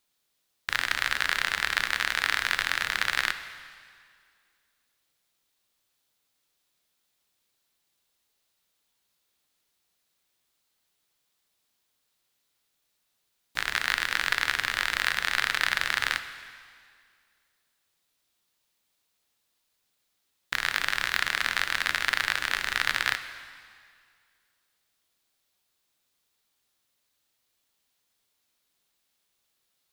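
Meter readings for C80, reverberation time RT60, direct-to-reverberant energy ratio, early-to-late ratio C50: 12.0 dB, 2.1 s, 9.5 dB, 11.0 dB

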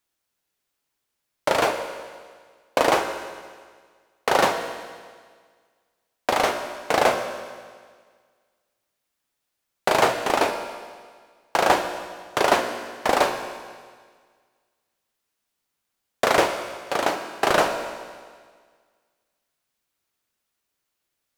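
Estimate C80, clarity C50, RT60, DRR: 8.5 dB, 7.5 dB, 1.7 s, 5.5 dB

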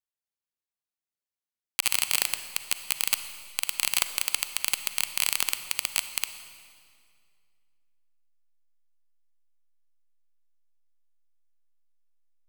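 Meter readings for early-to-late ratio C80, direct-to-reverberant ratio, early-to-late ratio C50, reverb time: 11.5 dB, 10.0 dB, 10.5 dB, 2.2 s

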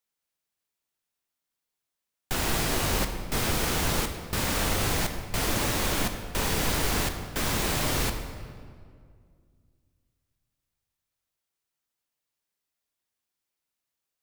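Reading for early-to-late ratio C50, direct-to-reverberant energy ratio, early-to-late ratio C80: 7.5 dB, 6.0 dB, 8.5 dB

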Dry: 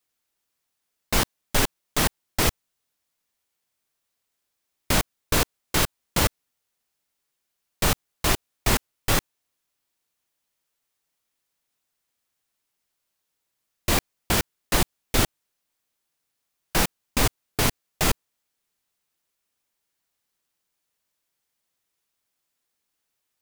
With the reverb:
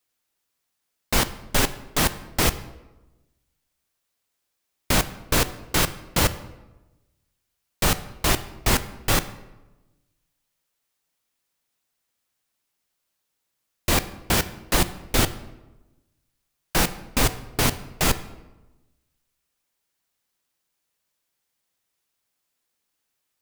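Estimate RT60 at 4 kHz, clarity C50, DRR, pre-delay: 0.70 s, 15.0 dB, 12.0 dB, 3 ms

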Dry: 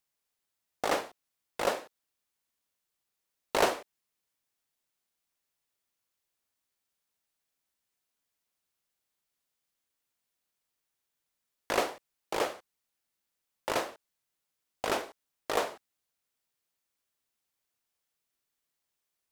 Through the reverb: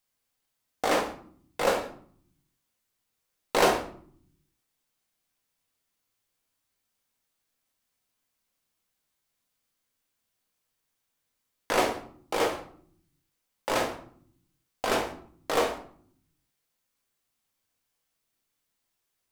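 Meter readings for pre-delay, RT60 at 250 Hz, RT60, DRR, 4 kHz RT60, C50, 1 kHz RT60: 4 ms, 1.0 s, 0.60 s, 1.0 dB, 0.35 s, 9.0 dB, 0.55 s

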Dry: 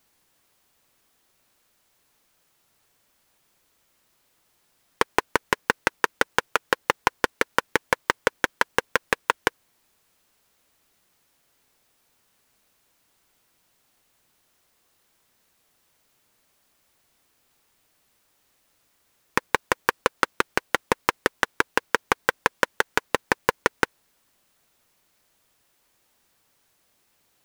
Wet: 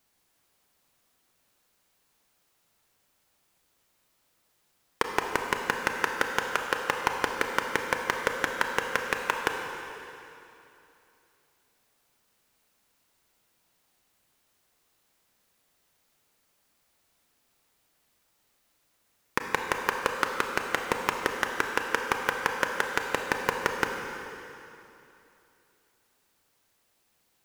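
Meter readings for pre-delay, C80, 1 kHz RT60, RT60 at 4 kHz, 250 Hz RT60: 25 ms, 4.5 dB, 2.9 s, 2.7 s, 2.9 s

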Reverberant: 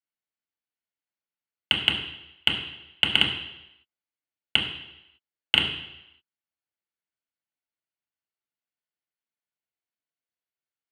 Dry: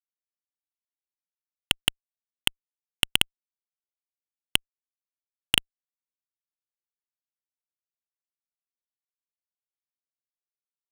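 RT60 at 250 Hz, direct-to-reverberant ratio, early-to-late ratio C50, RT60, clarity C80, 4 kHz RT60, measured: 0.85 s, −3.0 dB, 6.5 dB, 0.85 s, 9.0 dB, 0.90 s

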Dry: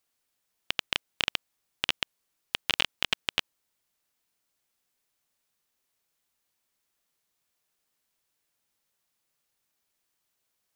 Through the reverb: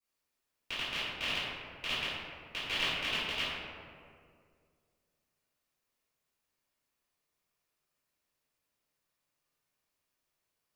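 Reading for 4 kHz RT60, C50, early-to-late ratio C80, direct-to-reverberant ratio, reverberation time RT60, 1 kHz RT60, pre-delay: 1.1 s, −2.5 dB, 0.0 dB, −16.0 dB, 2.2 s, 2.0 s, 3 ms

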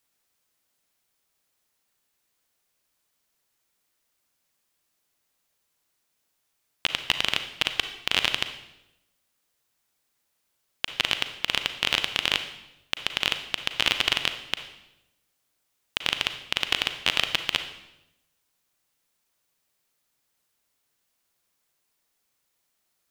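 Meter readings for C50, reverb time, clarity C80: 9.5 dB, 0.90 s, 12.5 dB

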